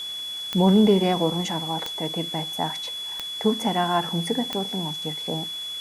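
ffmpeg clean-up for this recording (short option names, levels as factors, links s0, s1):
-af "adeclick=t=4,bandreject=f=3400:w=30,afwtdn=0.0063"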